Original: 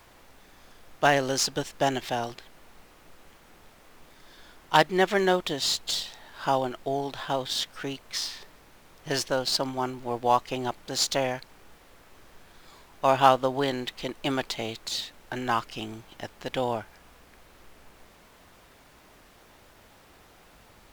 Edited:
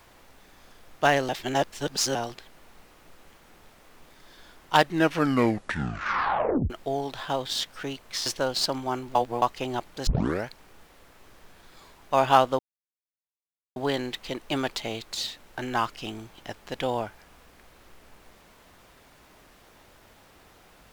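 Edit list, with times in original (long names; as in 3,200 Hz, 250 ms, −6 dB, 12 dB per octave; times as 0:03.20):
0:01.29–0:02.15: reverse
0:04.75: tape stop 1.95 s
0:08.26–0:09.17: remove
0:10.06–0:10.33: reverse
0:10.98: tape start 0.40 s
0:13.50: splice in silence 1.17 s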